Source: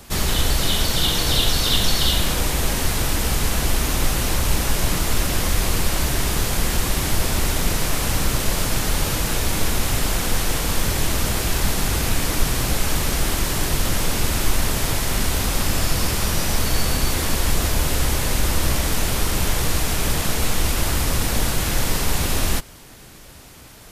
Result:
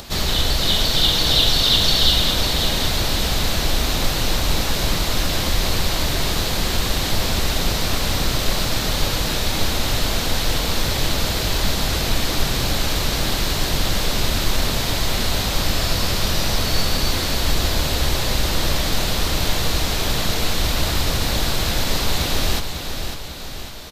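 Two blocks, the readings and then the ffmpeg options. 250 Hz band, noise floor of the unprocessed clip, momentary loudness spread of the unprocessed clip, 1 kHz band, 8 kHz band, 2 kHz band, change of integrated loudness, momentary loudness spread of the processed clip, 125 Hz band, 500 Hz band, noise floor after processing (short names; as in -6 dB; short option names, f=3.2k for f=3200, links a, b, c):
0.0 dB, -42 dBFS, 3 LU, +1.0 dB, -2.5 dB, +1.0 dB, +1.5 dB, 5 LU, -0.5 dB, +1.5 dB, -24 dBFS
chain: -af "equalizer=f=630:t=o:w=0.67:g=3,equalizer=f=4k:t=o:w=0.67:g=8,equalizer=f=10k:t=o:w=0.67:g=-7,acompressor=mode=upward:threshold=-30dB:ratio=2.5,aecho=1:1:549|1098|1647|2196|2745|3294:0.422|0.211|0.105|0.0527|0.0264|0.0132,volume=-1dB"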